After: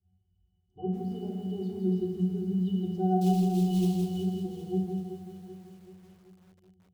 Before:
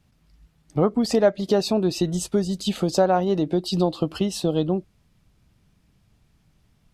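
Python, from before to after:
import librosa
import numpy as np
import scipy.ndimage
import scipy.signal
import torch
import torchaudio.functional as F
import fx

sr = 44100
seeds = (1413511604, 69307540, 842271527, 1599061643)

p1 = fx.octave_resonator(x, sr, note='F#', decay_s=0.38)
p2 = fx.quant_float(p1, sr, bits=2, at=(3.21, 4.05))
p3 = fx.curve_eq(p2, sr, hz=(120.0, 940.0, 1700.0, 3000.0), db=(0, -7, -25, 2))
p4 = p3 + fx.echo_feedback(p3, sr, ms=383, feedback_pct=55, wet_db=-11, dry=0)
p5 = fx.room_shoebox(p4, sr, seeds[0], volume_m3=2600.0, walls='furnished', distance_m=3.3)
y = fx.echo_crushed(p5, sr, ms=164, feedback_pct=35, bits=10, wet_db=-5.0)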